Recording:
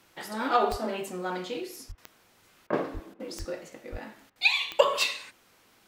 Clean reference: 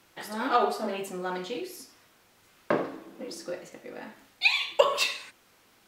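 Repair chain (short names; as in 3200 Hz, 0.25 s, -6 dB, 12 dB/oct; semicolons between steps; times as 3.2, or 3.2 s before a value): de-click; de-plosive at 0.7/1.88/2.93/3.38/3.91; interpolate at 1.92/2.67/3.14/4.3, 57 ms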